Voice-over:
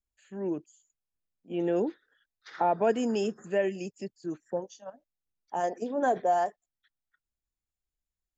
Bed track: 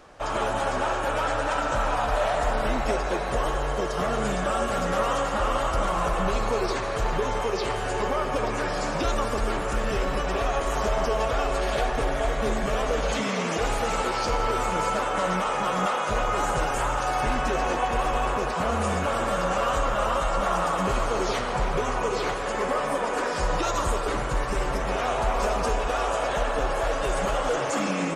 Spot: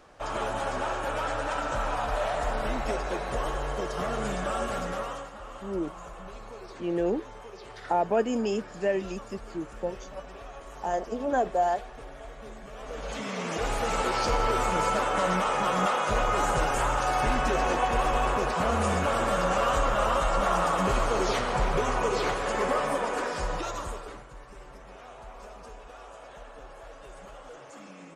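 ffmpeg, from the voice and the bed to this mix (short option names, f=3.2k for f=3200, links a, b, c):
-filter_complex "[0:a]adelay=5300,volume=0.5dB[a];[1:a]volume=13dB,afade=t=out:st=4.69:d=0.64:silence=0.211349,afade=t=in:st=12.74:d=1.43:silence=0.133352,afade=t=out:st=22.72:d=1.54:silence=0.1[b];[a][b]amix=inputs=2:normalize=0"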